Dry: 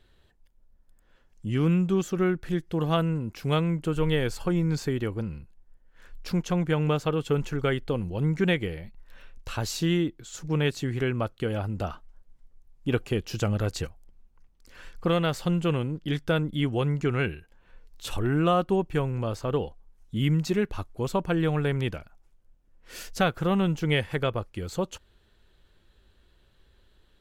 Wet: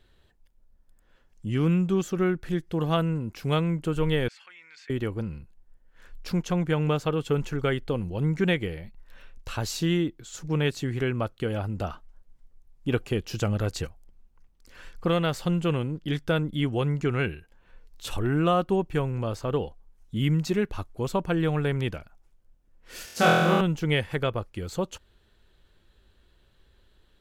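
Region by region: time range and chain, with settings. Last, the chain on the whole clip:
4.28–4.9 ladder band-pass 2400 Hz, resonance 50% + fast leveller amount 50%
23.05–23.61 HPF 130 Hz + flutter echo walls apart 4.1 m, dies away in 1.3 s
whole clip: dry

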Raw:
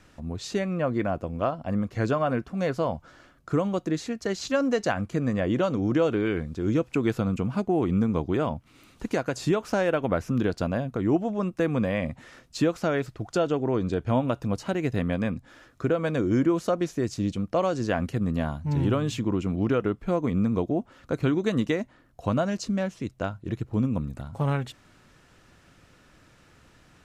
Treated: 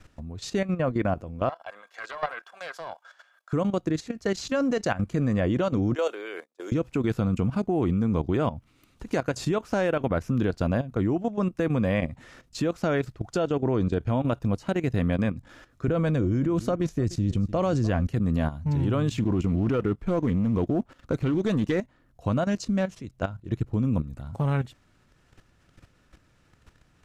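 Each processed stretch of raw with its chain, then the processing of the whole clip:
1.49–3.53 HPF 690 Hz 24 dB/oct + small resonant body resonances 1600/3400 Hz, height 16 dB, ringing for 85 ms + Doppler distortion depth 0.17 ms
5.95–6.72 gate -31 dBFS, range -30 dB + HPF 450 Hz 24 dB/oct + high shelf 6300 Hz +11.5 dB
15.88–18.07 low shelf 160 Hz +11.5 dB + echo 0.299 s -20 dB
19.11–21.8 sample leveller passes 1 + Doppler distortion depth 0.13 ms
whole clip: low shelf 120 Hz +7.5 dB; level quantiser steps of 13 dB; gain +2.5 dB

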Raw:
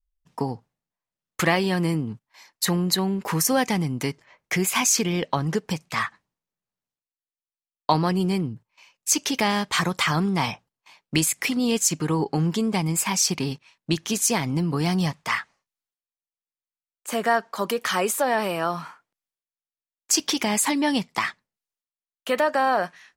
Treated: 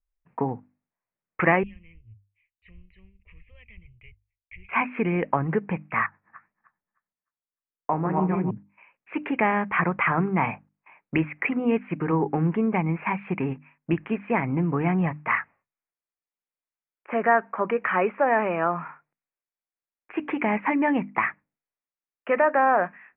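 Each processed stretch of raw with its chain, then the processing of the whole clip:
1.63–4.69 inverse Chebyshev band-stop 140–1600 Hz + expander -53 dBFS + RIAA curve playback
6.06–8.51 regenerating reverse delay 0.153 s, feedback 44%, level -1 dB + air absorption 450 m + flange 1.8 Hz, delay 3.6 ms, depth 9.5 ms, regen -74%
whole clip: steep low-pass 2500 Hz 72 dB/oct; low shelf 110 Hz -5.5 dB; notches 50/100/150/200/250/300 Hz; gain +1.5 dB

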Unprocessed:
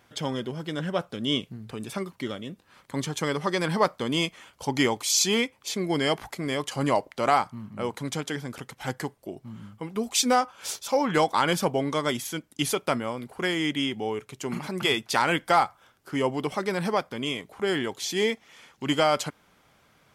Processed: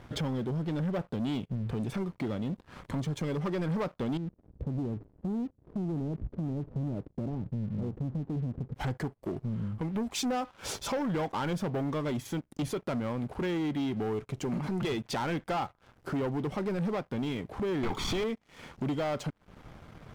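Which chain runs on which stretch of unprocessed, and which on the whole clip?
4.17–8.75 Gaussian blur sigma 24 samples + compressor 3:1, threshold -36 dBFS
17.83–18.24 overdrive pedal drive 31 dB, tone 2900 Hz, clips at -13 dBFS + comb 0.9 ms, depth 64%
whole clip: tilt -3.5 dB/oct; compressor 2.5:1, threshold -39 dBFS; sample leveller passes 3; gain -3.5 dB

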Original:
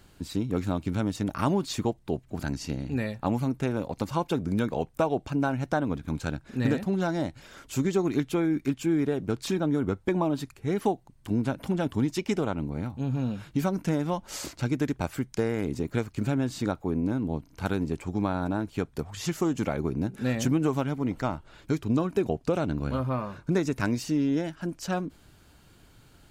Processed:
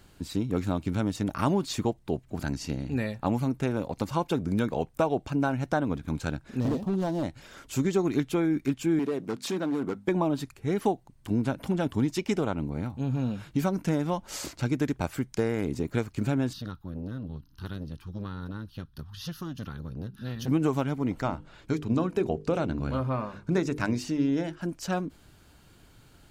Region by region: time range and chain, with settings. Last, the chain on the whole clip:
6.6–7.23 median filter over 15 samples + band shelf 1800 Hz -11.5 dB 1 oct + overloaded stage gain 22.5 dB
8.99–10.08 notches 50/100/150/200/250 Hz + hard clip -23.5 dBFS + HPF 190 Hz
16.53–20.48 bell 540 Hz -14.5 dB 1.8 oct + fixed phaser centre 2200 Hz, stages 6 + core saturation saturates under 470 Hz
21.23–24.59 high shelf 11000 Hz -10 dB + notches 50/100/150/200/250/300/350/400/450/500 Hz
whole clip: dry

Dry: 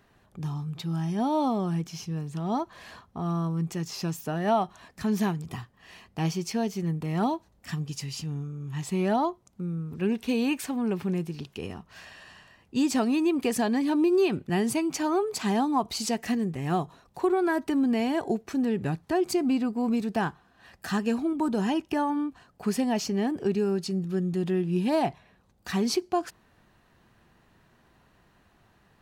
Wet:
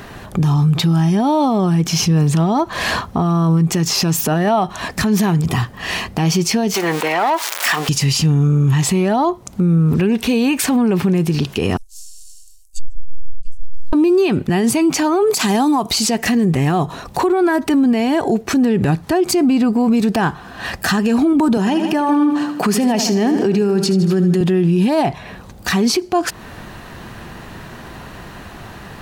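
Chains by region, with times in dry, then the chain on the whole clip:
6.74–7.89 switching spikes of -31 dBFS + overdrive pedal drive 20 dB, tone 1400 Hz, clips at -15.5 dBFS + HPF 610 Hz
11.77–13.93 half-wave gain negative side -7 dB + inverse Chebyshev band-stop 100–1800 Hz, stop band 70 dB + treble ducked by the level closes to 410 Hz, closed at -34 dBFS
15.3–15.91 HPF 120 Hz + high shelf 5800 Hz +11 dB
21.57–24.41 HPF 140 Hz 24 dB/oct + feedback echo 78 ms, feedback 52%, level -12 dB
whole clip: compressor 3:1, threshold -37 dBFS; maximiser +35 dB; gain -7.5 dB

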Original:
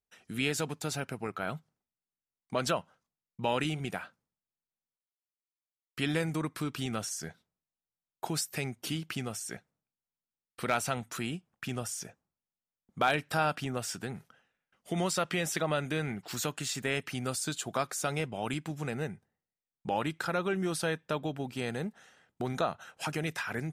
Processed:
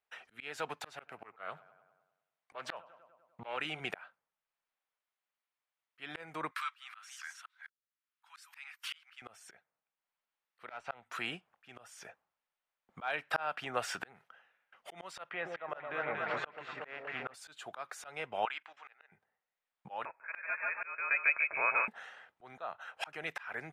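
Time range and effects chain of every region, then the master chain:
0.85–3.57 HPF 49 Hz + darkening echo 99 ms, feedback 54%, low-pass 2800 Hz, level -23.5 dB + Doppler distortion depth 0.32 ms
6.51–9.22 reverse delay 0.237 s, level -10 dB + steep high-pass 1100 Hz
10.66–11.06 de-esser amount 70% + air absorption 87 m + tube stage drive 25 dB, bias 0.6
15.29–17.34 LPF 1900 Hz + low shelf 380 Hz -4.5 dB + echo with dull and thin repeats by turns 0.117 s, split 1000 Hz, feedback 77%, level -5 dB
18.45–19.12 HPF 1200 Hz + level quantiser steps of 15 dB + air absorption 140 m
20.05–21.88 rippled Chebyshev high-pass 440 Hz, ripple 3 dB + feedback echo 0.148 s, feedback 27%, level -3.5 dB + inverted band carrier 3000 Hz
whole clip: three-band isolator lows -21 dB, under 550 Hz, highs -18 dB, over 3100 Hz; auto swell 0.637 s; gain +11 dB

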